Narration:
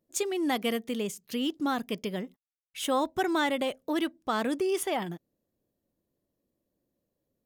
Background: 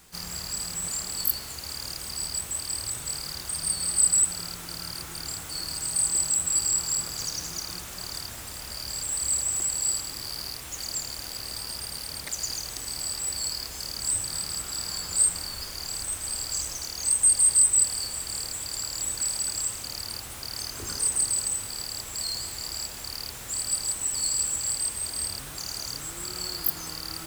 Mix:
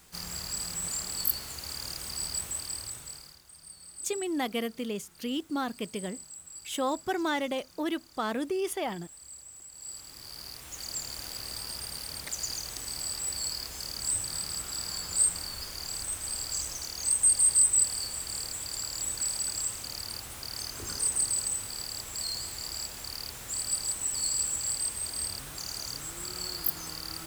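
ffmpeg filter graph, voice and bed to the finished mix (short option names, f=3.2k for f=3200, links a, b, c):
-filter_complex "[0:a]adelay=3900,volume=-2.5dB[a];[1:a]volume=15.5dB,afade=t=out:st=2.42:d=0.98:silence=0.11885,afade=t=in:st=9.71:d=1.47:silence=0.125893[b];[a][b]amix=inputs=2:normalize=0"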